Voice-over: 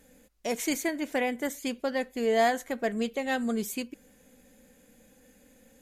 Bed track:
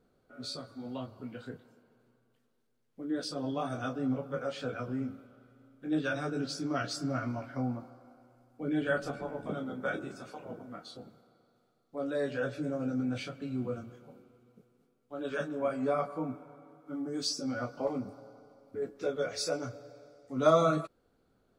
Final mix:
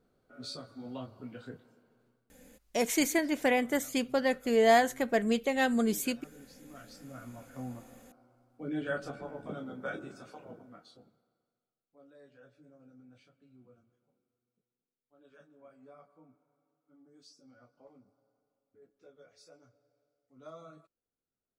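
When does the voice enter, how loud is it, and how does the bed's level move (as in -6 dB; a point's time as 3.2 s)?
2.30 s, +1.5 dB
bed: 2.06 s -2 dB
2.8 s -20.5 dB
6.59 s -20.5 dB
7.95 s -4 dB
10.39 s -4 dB
12.15 s -25 dB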